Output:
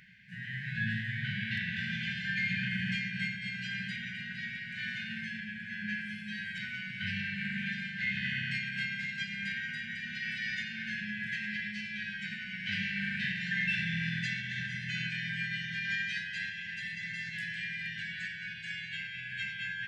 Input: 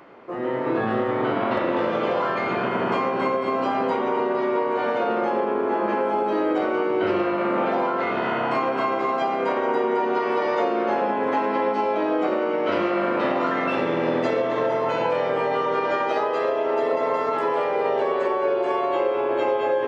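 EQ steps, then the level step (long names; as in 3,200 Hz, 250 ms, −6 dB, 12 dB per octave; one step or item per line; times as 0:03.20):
linear-phase brick-wall band-stop 210–1,500 Hz
0.0 dB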